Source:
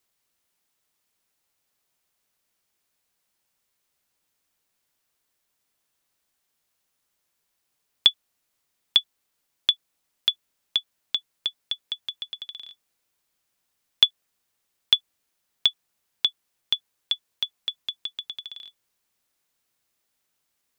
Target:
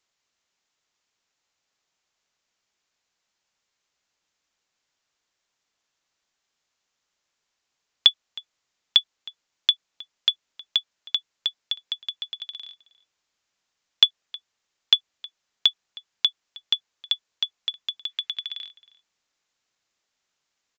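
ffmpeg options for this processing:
-filter_complex "[0:a]lowshelf=f=440:g=-6,aresample=16000,aresample=44100,asettb=1/sr,asplit=3[a][b][c];[a]atrim=end=18.094[d];[b]atrim=start=18.09:end=18.66,asetpts=PTS-STARTPTS,afade=t=in:d=0.004:c=qsin,afade=t=out:st=0.566:d=0.004:c=qsin,equalizer=f=2.1k:w=0.99:g=8.5[e];[c]atrim=start=18.656[f];[d][e]acrossfade=d=0.004:c1=hsin:c2=qsin[g];[g][f]acrossfade=d=0.004:c1=qsin:c2=hsin,asplit=2[h][i];[i]adelay=314.9,volume=-19dB,highshelf=f=4k:g=-7.08[j];[h][j]amix=inputs=2:normalize=0,volume=1.5dB"

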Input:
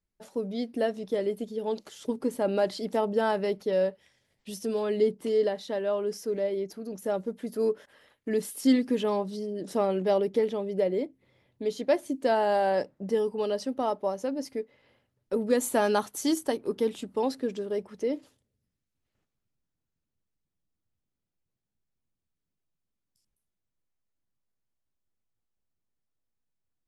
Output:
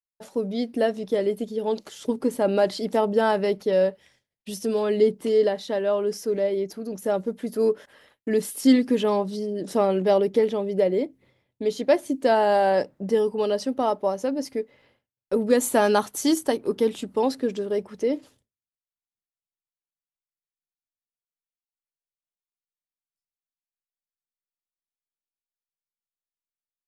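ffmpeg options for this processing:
-af "agate=range=-33dB:threshold=-58dB:ratio=3:detection=peak,volume=5dB"

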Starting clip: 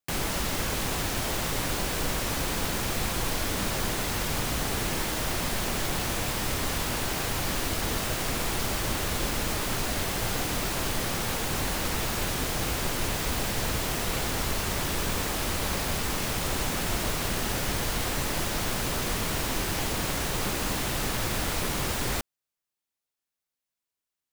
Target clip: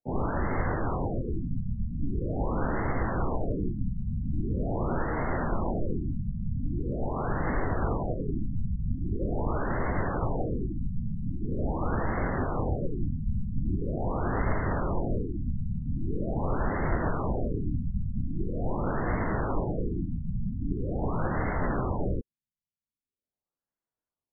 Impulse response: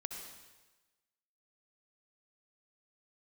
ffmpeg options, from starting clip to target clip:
-filter_complex "[0:a]asplit=2[a][b];[b]asetrate=66075,aresample=44100,atempo=0.66742,volume=-2dB[c];[a][c]amix=inputs=2:normalize=0,adynamicsmooth=sensitivity=1.5:basefreq=1.8k,afftfilt=real='re*lt(b*sr/1024,230*pow(2200/230,0.5+0.5*sin(2*PI*0.43*pts/sr)))':imag='im*lt(b*sr/1024,230*pow(2200/230,0.5+0.5*sin(2*PI*0.43*pts/sr)))':win_size=1024:overlap=0.75,volume=1dB"

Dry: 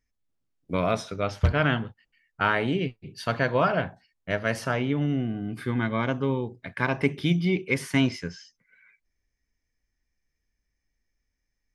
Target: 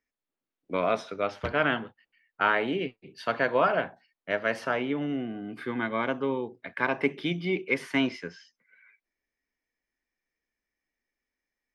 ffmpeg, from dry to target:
-filter_complex "[0:a]acrossover=split=230 4000:gain=0.112 1 0.251[a][b][c];[a][b][c]amix=inputs=3:normalize=0"

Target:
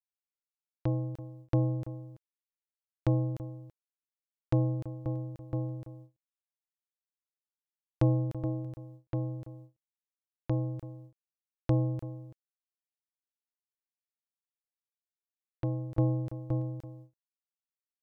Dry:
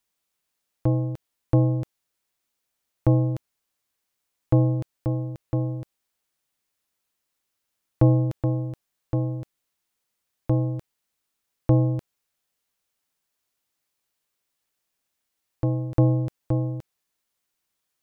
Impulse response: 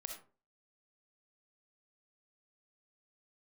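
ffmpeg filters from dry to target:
-filter_complex "[0:a]asplit=2[a][b];[b]adelay=332.4,volume=-14dB,highshelf=f=4k:g=-7.48[c];[a][c]amix=inputs=2:normalize=0,agate=range=-26dB:threshold=-41dB:ratio=16:detection=peak,volume=-8dB"

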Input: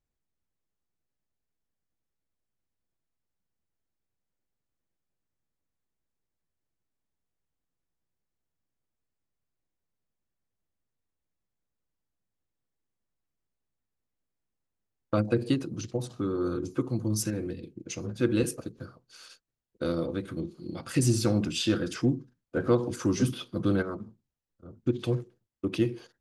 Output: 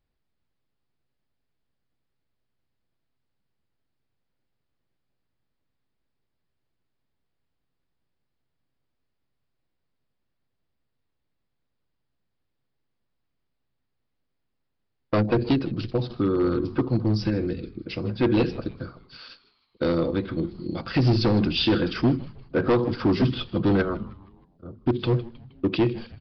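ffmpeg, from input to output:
-filter_complex "[0:a]aresample=11025,asoftclip=type=hard:threshold=-22.5dB,aresample=44100,asplit=5[a][b][c][d][e];[b]adelay=157,afreqshift=-130,volume=-18.5dB[f];[c]adelay=314,afreqshift=-260,volume=-24.7dB[g];[d]adelay=471,afreqshift=-390,volume=-30.9dB[h];[e]adelay=628,afreqshift=-520,volume=-37.1dB[i];[a][f][g][h][i]amix=inputs=5:normalize=0,volume=7dB"

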